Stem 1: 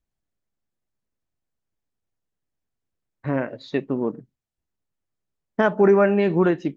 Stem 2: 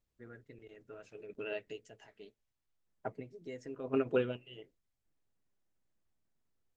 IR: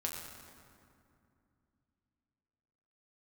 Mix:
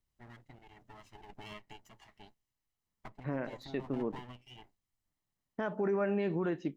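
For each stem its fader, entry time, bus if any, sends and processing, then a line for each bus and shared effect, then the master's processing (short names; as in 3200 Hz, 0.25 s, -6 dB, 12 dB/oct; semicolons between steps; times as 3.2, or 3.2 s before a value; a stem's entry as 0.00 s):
-10.0 dB, 0.00 s, no send, dry
+0.5 dB, 0.00 s, no send, minimum comb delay 1 ms; compressor 3:1, threshold -47 dBFS, peak gain reduction 13 dB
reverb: off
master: limiter -24 dBFS, peak gain reduction 7.5 dB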